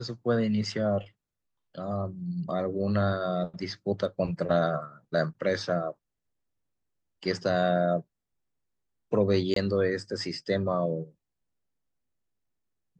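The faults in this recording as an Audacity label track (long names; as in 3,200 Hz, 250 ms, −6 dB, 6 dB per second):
9.540000	9.560000	drop-out 23 ms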